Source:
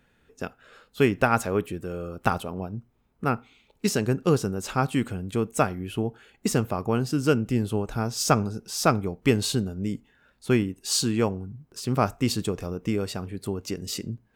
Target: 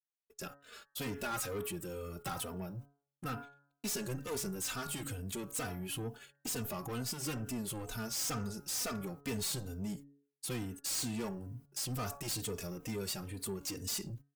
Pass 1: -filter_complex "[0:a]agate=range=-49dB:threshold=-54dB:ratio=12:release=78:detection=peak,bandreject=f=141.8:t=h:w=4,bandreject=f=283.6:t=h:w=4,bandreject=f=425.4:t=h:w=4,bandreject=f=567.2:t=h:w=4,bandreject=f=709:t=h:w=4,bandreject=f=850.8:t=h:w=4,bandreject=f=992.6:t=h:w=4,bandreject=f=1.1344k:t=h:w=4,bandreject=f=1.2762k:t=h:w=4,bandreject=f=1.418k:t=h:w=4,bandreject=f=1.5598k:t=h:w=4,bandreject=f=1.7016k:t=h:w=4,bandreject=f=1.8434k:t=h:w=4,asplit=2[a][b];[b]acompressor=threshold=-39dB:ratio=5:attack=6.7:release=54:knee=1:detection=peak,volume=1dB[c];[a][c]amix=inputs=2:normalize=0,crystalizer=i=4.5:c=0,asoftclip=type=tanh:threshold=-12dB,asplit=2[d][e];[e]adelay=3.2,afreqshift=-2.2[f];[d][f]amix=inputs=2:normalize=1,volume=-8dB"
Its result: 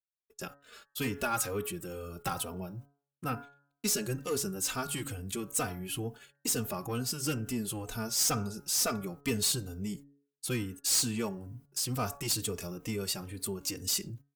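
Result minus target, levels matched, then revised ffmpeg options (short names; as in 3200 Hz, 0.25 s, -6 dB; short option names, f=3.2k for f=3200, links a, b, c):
soft clip: distortion -8 dB
-filter_complex "[0:a]agate=range=-49dB:threshold=-54dB:ratio=12:release=78:detection=peak,bandreject=f=141.8:t=h:w=4,bandreject=f=283.6:t=h:w=4,bandreject=f=425.4:t=h:w=4,bandreject=f=567.2:t=h:w=4,bandreject=f=709:t=h:w=4,bandreject=f=850.8:t=h:w=4,bandreject=f=992.6:t=h:w=4,bandreject=f=1.1344k:t=h:w=4,bandreject=f=1.2762k:t=h:w=4,bandreject=f=1.418k:t=h:w=4,bandreject=f=1.5598k:t=h:w=4,bandreject=f=1.7016k:t=h:w=4,bandreject=f=1.8434k:t=h:w=4,asplit=2[a][b];[b]acompressor=threshold=-39dB:ratio=5:attack=6.7:release=54:knee=1:detection=peak,volume=1dB[c];[a][c]amix=inputs=2:normalize=0,crystalizer=i=4.5:c=0,asoftclip=type=tanh:threshold=-23.5dB,asplit=2[d][e];[e]adelay=3.2,afreqshift=-2.2[f];[d][f]amix=inputs=2:normalize=1,volume=-8dB"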